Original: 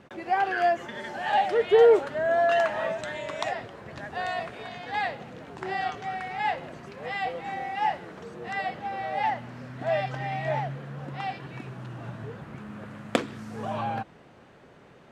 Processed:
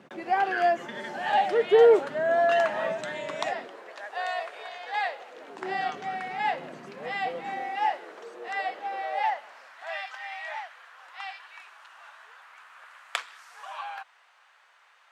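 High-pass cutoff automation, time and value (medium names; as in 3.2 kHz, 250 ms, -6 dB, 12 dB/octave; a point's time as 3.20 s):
high-pass 24 dB/octave
3.42 s 150 Hz
3.97 s 490 Hz
5.27 s 490 Hz
5.75 s 170 Hz
7.39 s 170 Hz
7.98 s 370 Hz
8.94 s 370 Hz
9.94 s 970 Hz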